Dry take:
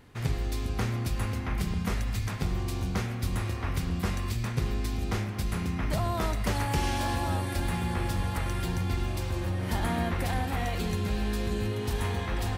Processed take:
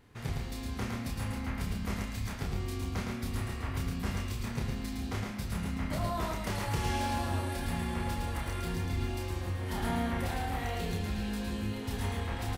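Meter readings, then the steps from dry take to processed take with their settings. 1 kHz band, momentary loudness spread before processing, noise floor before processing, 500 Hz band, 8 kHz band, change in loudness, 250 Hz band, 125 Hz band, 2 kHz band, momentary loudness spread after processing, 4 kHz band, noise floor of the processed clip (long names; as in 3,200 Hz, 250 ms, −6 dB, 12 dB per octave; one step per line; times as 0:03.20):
−3.5 dB, 3 LU, −33 dBFS, −4.0 dB, −3.5 dB, −4.0 dB, −3.0 dB, −5.0 dB, −3.5 dB, 4 LU, −3.5 dB, −39 dBFS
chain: double-tracking delay 30 ms −4 dB
single-tap delay 111 ms −4 dB
level −6.5 dB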